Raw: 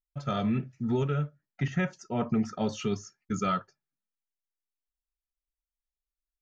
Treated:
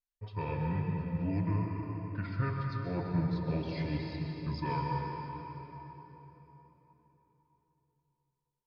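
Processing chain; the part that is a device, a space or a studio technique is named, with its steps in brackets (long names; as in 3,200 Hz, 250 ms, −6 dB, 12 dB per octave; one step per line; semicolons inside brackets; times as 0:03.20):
slowed and reverbed (speed change −26%; convolution reverb RT60 3.9 s, pre-delay 109 ms, DRR 0 dB)
level −6.5 dB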